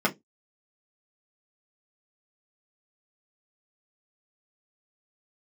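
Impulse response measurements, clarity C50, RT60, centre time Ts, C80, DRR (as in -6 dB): 22.0 dB, 0.15 s, 10 ms, 33.0 dB, -3.5 dB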